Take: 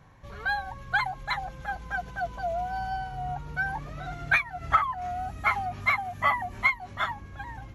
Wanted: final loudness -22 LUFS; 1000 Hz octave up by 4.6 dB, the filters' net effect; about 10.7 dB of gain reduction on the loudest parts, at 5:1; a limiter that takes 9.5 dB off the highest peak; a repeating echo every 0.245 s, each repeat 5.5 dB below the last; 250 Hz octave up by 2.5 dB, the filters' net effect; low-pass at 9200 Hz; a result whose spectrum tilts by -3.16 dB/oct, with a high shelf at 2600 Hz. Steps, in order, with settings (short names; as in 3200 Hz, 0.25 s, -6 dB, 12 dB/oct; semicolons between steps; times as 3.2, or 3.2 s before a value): LPF 9200 Hz; bell 250 Hz +3.5 dB; bell 1000 Hz +5.5 dB; high shelf 2600 Hz +3.5 dB; compressor 5:1, threshold -24 dBFS; limiter -22.5 dBFS; feedback echo 0.245 s, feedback 53%, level -5.5 dB; gain +9 dB